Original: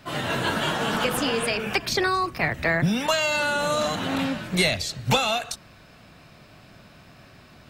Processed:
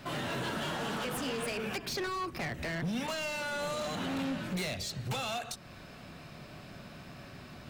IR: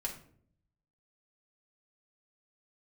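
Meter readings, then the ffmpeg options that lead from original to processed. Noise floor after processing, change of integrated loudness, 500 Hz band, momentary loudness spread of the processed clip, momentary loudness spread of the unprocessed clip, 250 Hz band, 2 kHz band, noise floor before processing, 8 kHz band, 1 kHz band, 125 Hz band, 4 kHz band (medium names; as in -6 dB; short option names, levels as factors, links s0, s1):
-50 dBFS, -11.5 dB, -11.0 dB, 14 LU, 5 LU, -9.0 dB, -12.5 dB, -51 dBFS, -10.0 dB, -11.5 dB, -9.5 dB, -11.5 dB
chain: -filter_complex "[0:a]acompressor=threshold=0.0126:ratio=2,volume=44.7,asoftclip=hard,volume=0.0224,asplit=2[s0][s1];[s1]bandpass=f=250:t=q:w=0.61:csg=0[s2];[1:a]atrim=start_sample=2205,asetrate=26901,aresample=44100[s3];[s2][s3]afir=irnorm=-1:irlink=0,volume=0.299[s4];[s0][s4]amix=inputs=2:normalize=0"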